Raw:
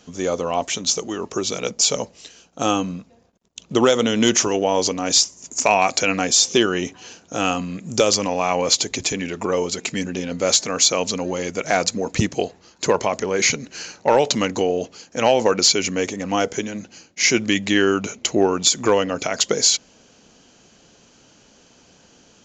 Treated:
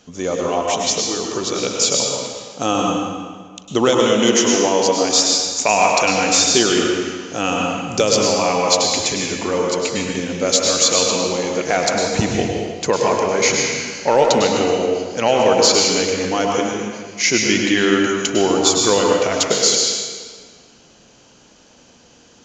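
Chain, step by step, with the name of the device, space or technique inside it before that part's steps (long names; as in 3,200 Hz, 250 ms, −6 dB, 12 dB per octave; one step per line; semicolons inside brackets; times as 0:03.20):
stairwell (convolution reverb RT60 1.6 s, pre-delay 97 ms, DRR −1 dB)
0:04.12–0:05.39: high-pass filter 140 Hz 12 dB per octave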